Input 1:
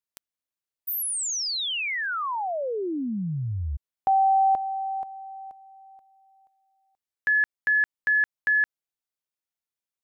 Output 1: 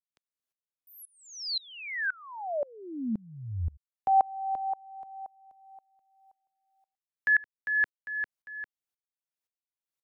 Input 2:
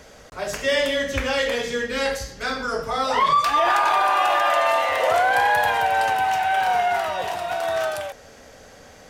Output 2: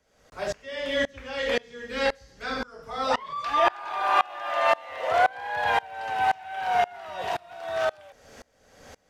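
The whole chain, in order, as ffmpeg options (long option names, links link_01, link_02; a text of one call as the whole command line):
ffmpeg -i in.wav -filter_complex "[0:a]acrossover=split=320|620|5600[link_01][link_02][link_03][link_04];[link_04]acompressor=threshold=-51dB:ratio=6:attack=0.45:release=22[link_05];[link_01][link_02][link_03][link_05]amix=inputs=4:normalize=0,aeval=exprs='val(0)*pow(10,-28*if(lt(mod(-1.9*n/s,1),2*abs(-1.9)/1000),1-mod(-1.9*n/s,1)/(2*abs(-1.9)/1000),(mod(-1.9*n/s,1)-2*abs(-1.9)/1000)/(1-2*abs(-1.9)/1000))/20)':channel_layout=same,volume=2dB" out.wav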